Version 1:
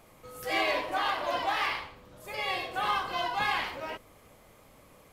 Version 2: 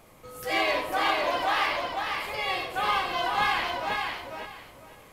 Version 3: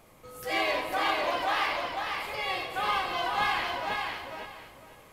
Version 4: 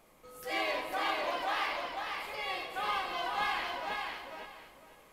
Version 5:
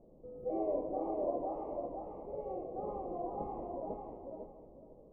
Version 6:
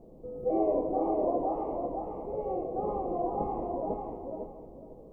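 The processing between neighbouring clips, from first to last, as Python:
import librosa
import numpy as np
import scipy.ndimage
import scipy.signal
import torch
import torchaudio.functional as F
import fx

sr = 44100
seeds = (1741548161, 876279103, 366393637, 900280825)

y1 = fx.echo_feedback(x, sr, ms=497, feedback_pct=22, wet_db=-4.0)
y1 = y1 * 10.0 ** (2.5 / 20.0)
y2 = y1 + 10.0 ** (-13.0 / 20.0) * np.pad(y1, (int(227 * sr / 1000.0), 0))[:len(y1)]
y2 = y2 * 10.0 ** (-2.5 / 20.0)
y3 = fx.peak_eq(y2, sr, hz=100.0, db=-12.5, octaves=0.78)
y3 = y3 * 10.0 ** (-5.0 / 20.0)
y4 = scipy.signal.sosfilt(scipy.signal.cheby2(4, 50, 1500.0, 'lowpass', fs=sr, output='sos'), y3)
y4 = y4 * 10.0 ** (6.5 / 20.0)
y5 = fx.notch(y4, sr, hz=580.0, q=12.0)
y5 = y5 * 10.0 ** (8.5 / 20.0)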